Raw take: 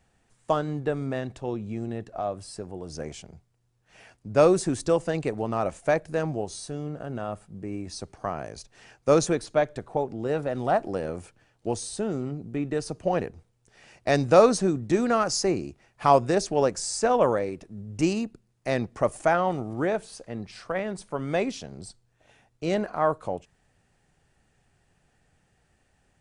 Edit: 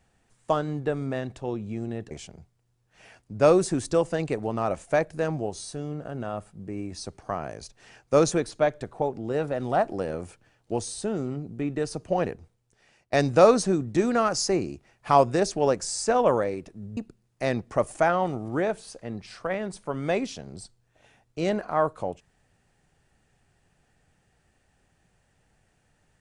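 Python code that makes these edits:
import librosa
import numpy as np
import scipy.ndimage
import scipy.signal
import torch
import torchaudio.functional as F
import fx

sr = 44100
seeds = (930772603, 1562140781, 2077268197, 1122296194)

y = fx.edit(x, sr, fx.cut(start_s=2.11, length_s=0.95),
    fx.fade_out_to(start_s=13.26, length_s=0.82, floor_db=-16.5),
    fx.cut(start_s=17.92, length_s=0.3), tone=tone)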